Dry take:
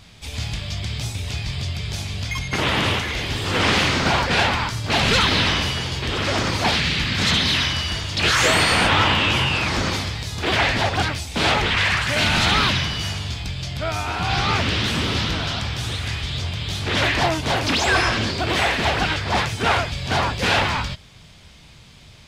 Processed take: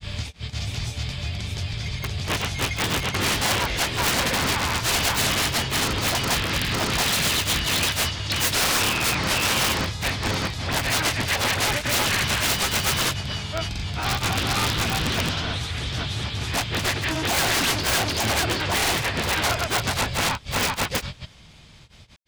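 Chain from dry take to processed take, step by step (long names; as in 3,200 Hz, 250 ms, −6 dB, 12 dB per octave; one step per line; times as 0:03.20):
wrap-around overflow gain 13 dB
granular cloud 151 ms, grains 16 per second, spray 663 ms, pitch spread up and down by 0 semitones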